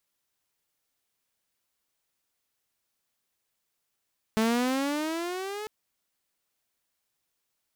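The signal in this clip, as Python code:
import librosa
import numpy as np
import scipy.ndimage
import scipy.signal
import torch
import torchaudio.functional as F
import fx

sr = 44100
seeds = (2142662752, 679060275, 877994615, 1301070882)

y = fx.riser_tone(sr, length_s=1.3, level_db=-19, wave='saw', hz=217.0, rise_st=12.0, swell_db=-12.5)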